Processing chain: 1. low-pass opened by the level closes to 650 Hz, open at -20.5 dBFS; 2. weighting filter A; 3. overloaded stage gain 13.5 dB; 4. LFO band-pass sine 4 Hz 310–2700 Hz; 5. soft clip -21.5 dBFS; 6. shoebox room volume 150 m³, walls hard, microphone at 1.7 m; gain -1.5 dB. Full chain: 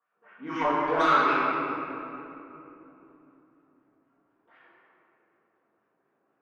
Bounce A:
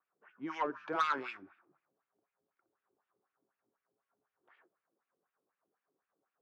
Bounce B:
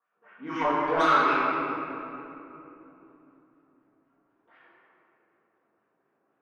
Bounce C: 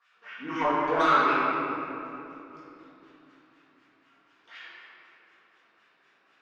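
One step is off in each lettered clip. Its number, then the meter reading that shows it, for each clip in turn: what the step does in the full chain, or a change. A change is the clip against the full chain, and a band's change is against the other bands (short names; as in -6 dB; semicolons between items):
6, echo-to-direct 12.0 dB to none; 3, distortion -17 dB; 1, momentary loudness spread change +3 LU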